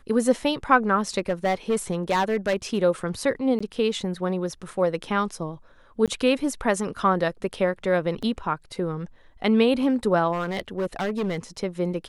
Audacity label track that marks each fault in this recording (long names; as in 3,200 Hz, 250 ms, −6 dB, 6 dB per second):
1.180000	2.790000	clipping −17.5 dBFS
3.590000	3.600000	drop-out 15 ms
6.060000	6.080000	drop-out 17 ms
8.220000	8.230000	drop-out 6.1 ms
10.320000	11.370000	clipping −22 dBFS